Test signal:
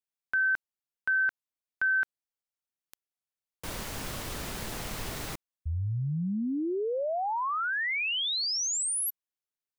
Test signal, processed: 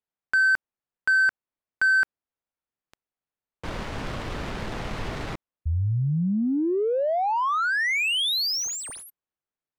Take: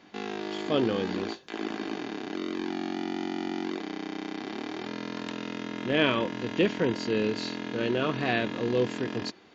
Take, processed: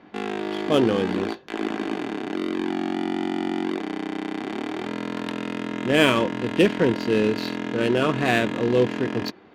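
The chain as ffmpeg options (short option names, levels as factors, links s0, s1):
-af "adynamicsmooth=sensitivity=6:basefreq=2200,volume=2.11"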